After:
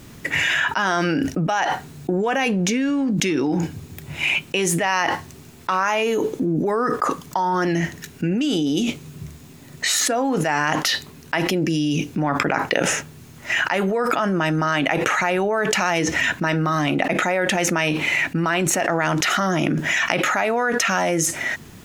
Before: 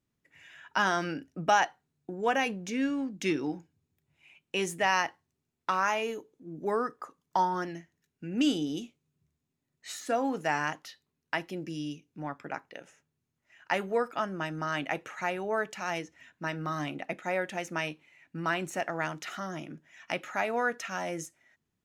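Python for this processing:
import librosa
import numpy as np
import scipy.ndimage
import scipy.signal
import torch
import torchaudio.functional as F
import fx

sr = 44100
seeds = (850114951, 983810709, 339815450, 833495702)

y = fx.env_flatten(x, sr, amount_pct=100)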